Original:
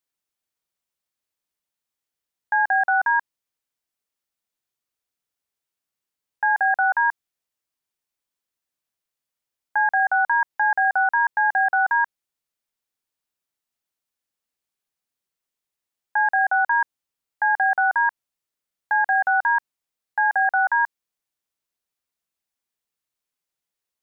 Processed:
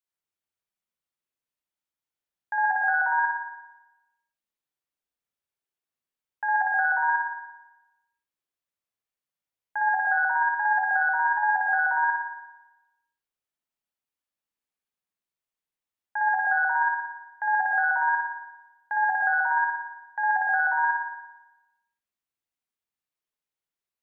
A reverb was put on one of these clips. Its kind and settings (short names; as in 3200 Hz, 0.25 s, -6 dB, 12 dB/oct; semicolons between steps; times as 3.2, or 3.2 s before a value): spring tank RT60 1 s, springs 56 ms, chirp 45 ms, DRR -2 dB; gain -8.5 dB